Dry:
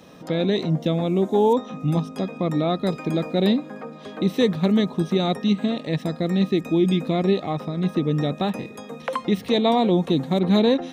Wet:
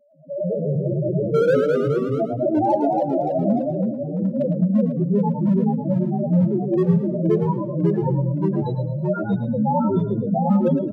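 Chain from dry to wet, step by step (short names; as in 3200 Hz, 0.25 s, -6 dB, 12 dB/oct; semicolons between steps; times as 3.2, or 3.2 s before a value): inharmonic rescaling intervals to 120%; notches 50/100/150 Hz; spectral gain 1.29–2.92, 230–1200 Hz +8 dB; thirty-one-band EQ 630 Hz +6 dB, 3150 Hz +5 dB, 5000 Hz -6 dB; AGC gain up to 5.5 dB; in parallel at -9 dB: wrapped overs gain 10 dB; on the sum: loudest bins only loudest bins 1; hard clip -15.5 dBFS, distortion -17 dB; on a send: frequency-shifting echo 0.107 s, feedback 31%, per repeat +33 Hz, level -8.5 dB; on the sum: echoes that change speed 0.12 s, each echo -1 st, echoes 3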